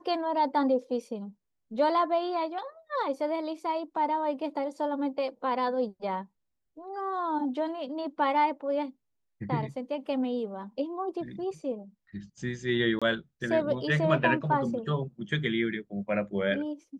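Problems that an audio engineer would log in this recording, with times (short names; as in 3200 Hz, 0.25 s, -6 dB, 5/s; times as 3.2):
12.99–13.02 gap 26 ms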